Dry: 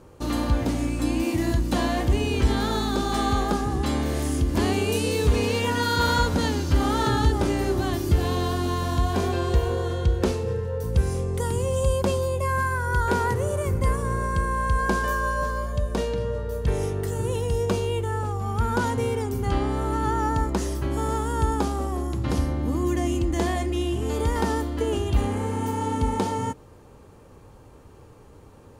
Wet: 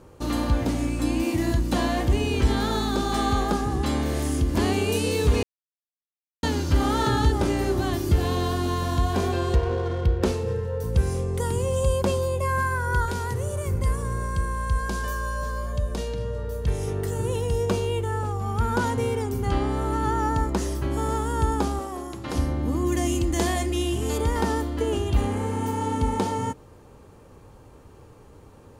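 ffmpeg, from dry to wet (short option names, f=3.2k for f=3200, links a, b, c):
-filter_complex "[0:a]asettb=1/sr,asplit=3[a][b][c];[a]atrim=end=9.554[d];[b]atrim=start=9.55:end=10.23,asetpts=PTS-STARTPTS,afade=t=in:d=0.004:c=qsin,afade=t=out:st=0.676:d=0.004:c=qsin,adynamicsmooth=sensitivity=6.5:basefreq=920[e];[c]atrim=start=10.226[f];[d][e]acrossfade=d=0.004:c1=hsin:c2=qsin[g];[g][f]acrossfade=d=0.004:c1=qsin:c2=hsin,asettb=1/sr,asplit=3[h][i][j];[h]atrim=end=13.054[k];[i]atrim=start=13.05:end=16.88,asetpts=PTS-STARTPTS,afade=t=in:d=0.004:c=qsin,afade=t=out:st=3.826:d=0.004:c=qsin,acrossover=split=140|3000[l][m][n];[m]acompressor=threshold=-32dB:ratio=2.5:attack=3.2:release=140:knee=2.83:detection=peak[o];[l][o][n]amix=inputs=3:normalize=0[p];[j]atrim=start=16.876[q];[k][p]acrossfade=d=0.004:c1=hsin:c2=qsin[r];[r][q]acrossfade=d=0.004:c1=qsin:c2=hsin,asettb=1/sr,asplit=3[s][t][u];[s]atrim=end=21.794[v];[t]atrim=start=21.79:end=22.35,asetpts=PTS-STARTPTS,afade=t=in:d=0.004:c=qsin,afade=t=out:st=0.556:d=0.004:c=qsin,equalizer=f=60:w=0.32:g=-14.5[w];[u]atrim=start=22.346[x];[v][w]acrossfade=d=0.004:c1=hsin:c2=qsin[y];[y][x]acrossfade=d=0.004:c1=qsin:c2=hsin,asettb=1/sr,asplit=3[z][aa][ab];[z]atrim=end=22.924[ac];[aa]atrim=start=22.92:end=24.18,asetpts=PTS-STARTPTS,afade=t=in:d=0.004:c=qsin,afade=t=out:st=1.256:d=0.004:c=qsin,highshelf=f=3.6k:g=8.5[ad];[ab]atrim=start=24.176[ae];[ac][ad]acrossfade=d=0.004:c1=hsin:c2=qsin[af];[af][ae]acrossfade=d=0.004:c1=qsin:c2=hsin,asplit=3[ag][ah][ai];[ag]atrim=end=5.43,asetpts=PTS-STARTPTS,afade=t=out:st=5.426:d=0.004:c=hsin[aj];[ah]atrim=start=5.43:end=6.43,asetpts=PTS-STARTPTS,volume=0[ak];[ai]atrim=start=6.43,asetpts=PTS-STARTPTS,afade=t=in:d=0.004:c=hsin[al];[aj][ak][al]concat=n=3:v=0:a=1"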